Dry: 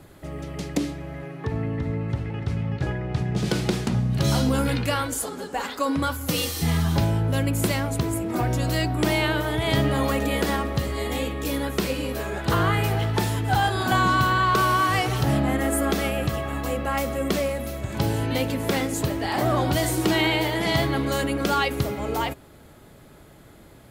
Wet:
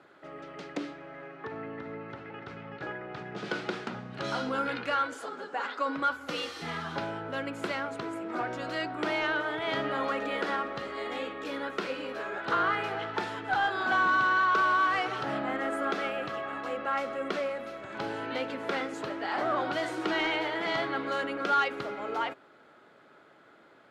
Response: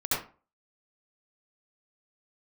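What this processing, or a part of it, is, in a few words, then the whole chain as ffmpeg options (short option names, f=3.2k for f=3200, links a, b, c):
intercom: -af "highpass=350,lowpass=3.5k,equalizer=f=1.4k:t=o:w=0.42:g=8.5,asoftclip=type=tanh:threshold=-11dB,volume=-5.5dB"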